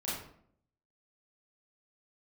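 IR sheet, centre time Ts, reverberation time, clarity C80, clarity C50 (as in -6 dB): 59 ms, 0.65 s, 5.5 dB, 1.0 dB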